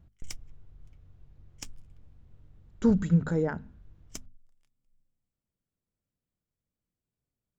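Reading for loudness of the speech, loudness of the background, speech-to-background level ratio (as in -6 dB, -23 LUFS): -27.0 LUFS, -47.0 LUFS, 20.0 dB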